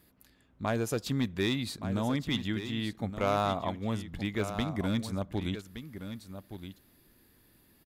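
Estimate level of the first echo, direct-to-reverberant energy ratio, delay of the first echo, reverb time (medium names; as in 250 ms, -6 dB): -10.5 dB, no reverb, 1170 ms, no reverb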